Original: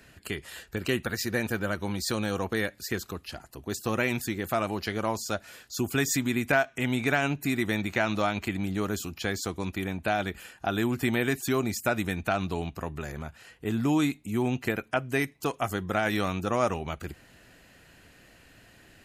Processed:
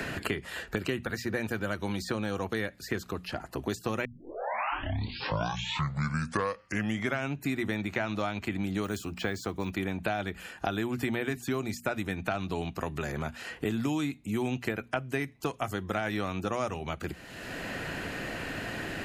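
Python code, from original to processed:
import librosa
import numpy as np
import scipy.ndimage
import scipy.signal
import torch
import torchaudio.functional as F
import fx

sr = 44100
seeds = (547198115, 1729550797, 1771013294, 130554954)

y = fx.resample_bad(x, sr, factor=2, down='none', up='hold', at=(8.84, 9.72))
y = fx.edit(y, sr, fx.tape_start(start_s=4.05, length_s=3.3), tone=tone)
y = fx.high_shelf(y, sr, hz=6500.0, db=-7.5)
y = fx.hum_notches(y, sr, base_hz=60, count=4)
y = fx.band_squash(y, sr, depth_pct=100)
y = F.gain(torch.from_numpy(y), -3.5).numpy()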